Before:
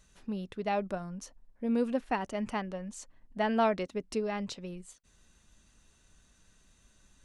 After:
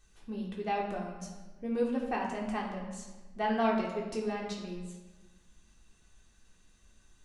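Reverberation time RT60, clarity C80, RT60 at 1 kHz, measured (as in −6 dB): 1.2 s, 6.0 dB, 1.2 s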